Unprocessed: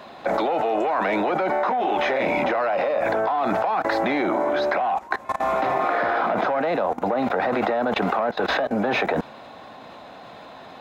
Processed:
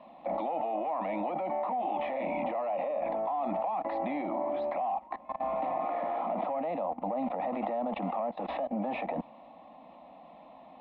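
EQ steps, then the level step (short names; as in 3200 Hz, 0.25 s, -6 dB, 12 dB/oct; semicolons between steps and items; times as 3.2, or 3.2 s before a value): LPF 2600 Hz 24 dB/oct; fixed phaser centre 410 Hz, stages 6; -8.0 dB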